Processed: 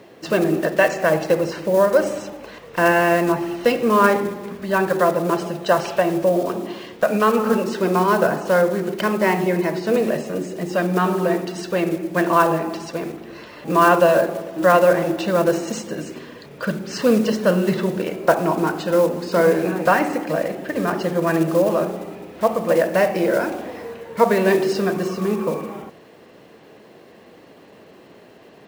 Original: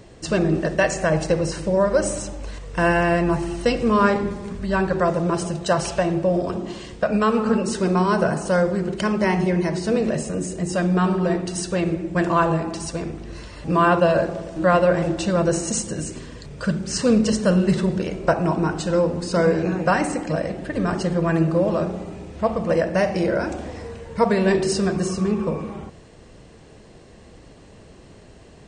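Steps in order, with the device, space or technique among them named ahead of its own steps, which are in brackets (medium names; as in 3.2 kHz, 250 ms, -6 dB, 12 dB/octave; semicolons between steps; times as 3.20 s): early digital voice recorder (band-pass 250–3600 Hz; block-companded coder 5-bit); trim +3.5 dB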